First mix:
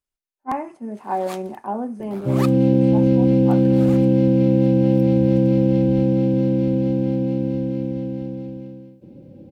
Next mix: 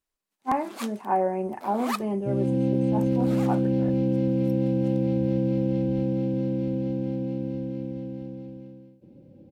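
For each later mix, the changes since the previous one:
first sound: entry -0.50 s; second sound -8.0 dB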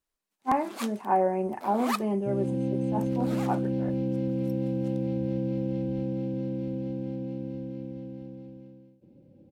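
second sound -5.0 dB

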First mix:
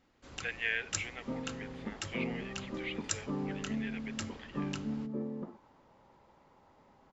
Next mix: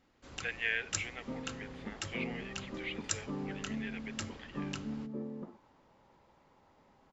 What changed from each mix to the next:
second sound -3.0 dB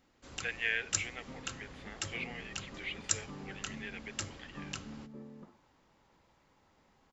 second sound: add peaking EQ 360 Hz -10 dB 2.9 oct; master: add treble shelf 7.8 kHz +10 dB

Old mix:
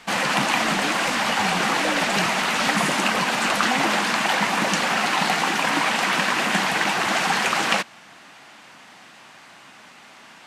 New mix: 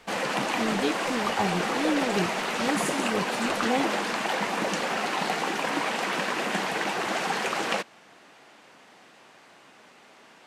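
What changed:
background -8.5 dB; master: add peaking EQ 440 Hz +9.5 dB 1.1 oct

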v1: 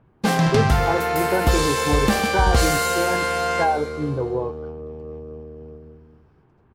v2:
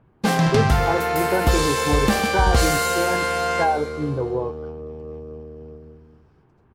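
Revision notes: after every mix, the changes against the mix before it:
second sound: add treble shelf 4.1 kHz +7 dB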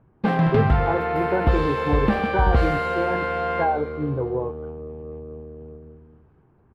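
master: add distance through air 480 m

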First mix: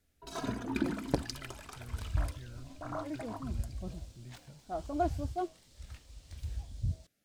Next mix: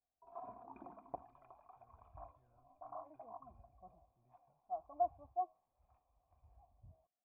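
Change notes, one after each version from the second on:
master: add cascade formant filter a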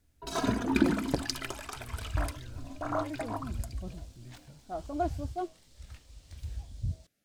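first sound +7.5 dB; master: remove cascade formant filter a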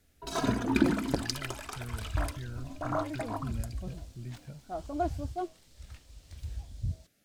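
speech +8.0 dB

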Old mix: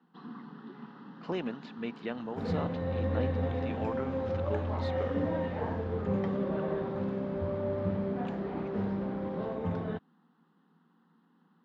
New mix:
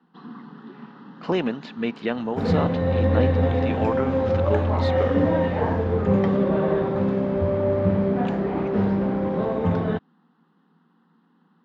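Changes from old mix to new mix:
speech +11.0 dB; first sound +5.0 dB; second sound +11.0 dB

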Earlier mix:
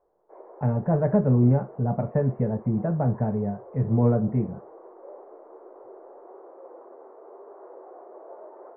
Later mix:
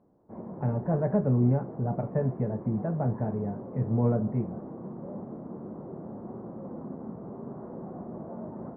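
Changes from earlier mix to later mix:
speech -4.5 dB; background: remove steep high-pass 380 Hz 48 dB/octave

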